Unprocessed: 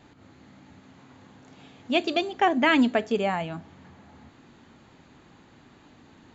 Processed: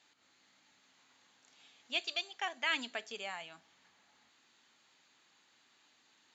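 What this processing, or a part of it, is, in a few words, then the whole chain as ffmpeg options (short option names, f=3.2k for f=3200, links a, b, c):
piezo pickup straight into a mixer: -filter_complex "[0:a]asettb=1/sr,asplit=3[a][b][c];[a]atrim=end=1.994[d];[b]atrim=start=1.99:end=2.69,asetpts=PTS-STARTPTS,afade=t=in:d=0.004:c=qsin,afade=t=out:st=0.696:d=0.004:c=qsin,equalizer=f=270:w=1.5:g=-9[e];[c]atrim=start=2.686[f];[d][e]acrossfade=d=0.004:c1=hsin:c2=qsin[g];[g][f]acrossfade=d=0.004:c1=qsin:c2=hsin,lowpass=6.7k,aderivative,volume=1.5dB"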